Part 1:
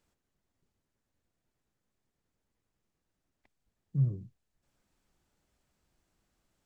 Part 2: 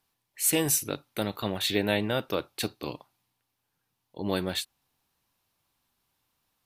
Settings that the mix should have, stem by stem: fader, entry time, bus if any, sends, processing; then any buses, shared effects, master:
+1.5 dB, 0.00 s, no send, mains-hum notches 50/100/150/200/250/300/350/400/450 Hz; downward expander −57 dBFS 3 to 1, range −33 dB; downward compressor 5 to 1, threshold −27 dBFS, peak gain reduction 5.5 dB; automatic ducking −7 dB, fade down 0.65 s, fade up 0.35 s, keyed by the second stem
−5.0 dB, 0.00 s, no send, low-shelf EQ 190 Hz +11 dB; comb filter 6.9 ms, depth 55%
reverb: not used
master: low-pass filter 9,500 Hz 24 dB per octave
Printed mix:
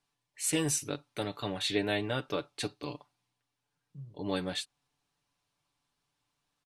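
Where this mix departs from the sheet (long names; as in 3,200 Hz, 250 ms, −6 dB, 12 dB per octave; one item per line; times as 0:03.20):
stem 1 +1.5 dB → −9.0 dB
stem 2: missing low-shelf EQ 190 Hz +11 dB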